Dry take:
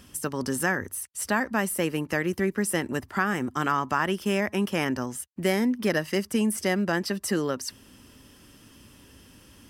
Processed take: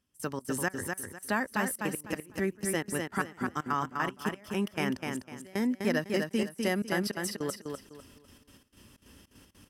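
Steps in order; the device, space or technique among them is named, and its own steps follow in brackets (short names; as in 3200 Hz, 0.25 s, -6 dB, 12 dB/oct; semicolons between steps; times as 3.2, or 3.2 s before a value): 6.46–7.12 bell 11000 Hz +10 dB 0.27 oct; trance gate with a delay (step gate "..xx.xx.x.x" 154 bpm -24 dB; feedback echo 0.251 s, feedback 26%, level -4.5 dB); gain -4.5 dB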